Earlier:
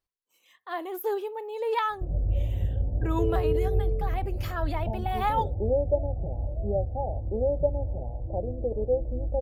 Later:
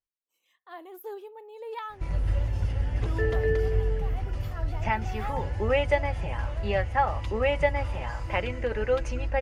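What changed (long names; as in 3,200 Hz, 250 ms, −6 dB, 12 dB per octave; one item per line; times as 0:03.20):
speech −10.0 dB
background: remove Butterworth low-pass 750 Hz 72 dB per octave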